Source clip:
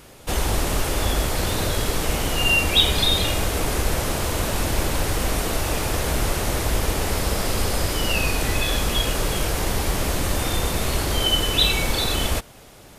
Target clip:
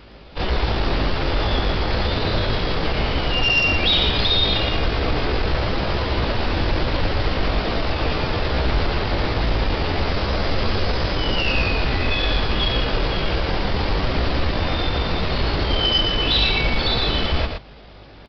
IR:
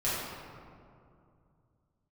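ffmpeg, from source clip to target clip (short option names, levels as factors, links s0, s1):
-af "aeval=exprs='val(0)+0.00316*(sin(2*PI*50*n/s)+sin(2*PI*2*50*n/s)/2+sin(2*PI*3*50*n/s)/3+sin(2*PI*4*50*n/s)/4+sin(2*PI*5*50*n/s)/5)':c=same,aeval=exprs='0.708*(cos(1*acos(clip(val(0)/0.708,-1,1)))-cos(1*PI/2))+0.0112*(cos(5*acos(clip(val(0)/0.708,-1,1)))-cos(5*PI/2))+0.0398*(cos(7*acos(clip(val(0)/0.708,-1,1)))-cos(7*PI/2))':c=same,aresample=11025,volume=10,asoftclip=hard,volume=0.1,aresample=44100,atempo=0.71,aecho=1:1:117:0.531,volume=1.78"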